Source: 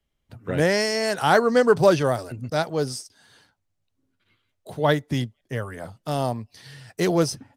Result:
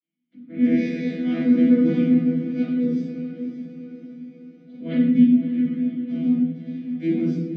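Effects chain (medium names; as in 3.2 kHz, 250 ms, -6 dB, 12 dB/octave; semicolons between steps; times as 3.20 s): vocoder on a broken chord bare fifth, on E3, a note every 109 ms; vowel filter i; on a send: echo that smears into a reverb 571 ms, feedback 51%, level -10.5 dB; on the sum: simulated room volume 460 m³, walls mixed, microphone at 7.2 m; trim -2.5 dB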